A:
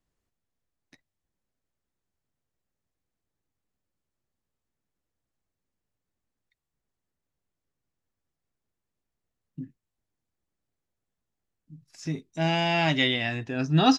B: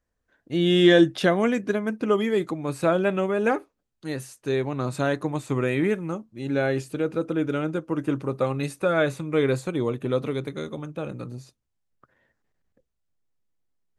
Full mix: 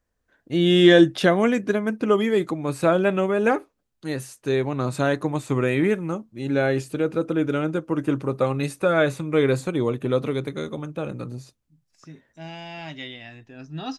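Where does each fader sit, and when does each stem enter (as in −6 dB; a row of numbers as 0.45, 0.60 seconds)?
−12.5, +2.5 decibels; 0.00, 0.00 seconds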